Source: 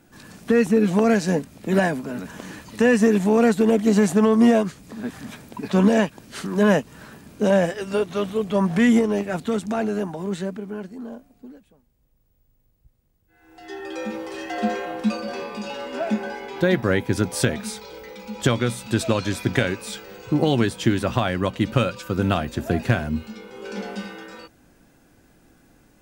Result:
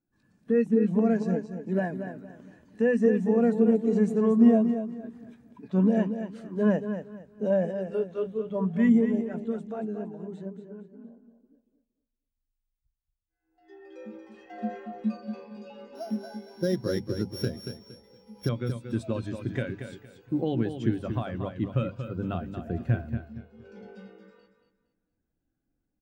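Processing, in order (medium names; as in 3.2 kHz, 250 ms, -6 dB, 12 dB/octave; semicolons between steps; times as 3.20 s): 15.95–18.49 s: sorted samples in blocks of 8 samples; bass shelf 110 Hz +4 dB; hum notches 50/100/150/200/250 Hz; feedback delay 232 ms, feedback 40%, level -6 dB; spectral contrast expander 1.5:1; trim -6 dB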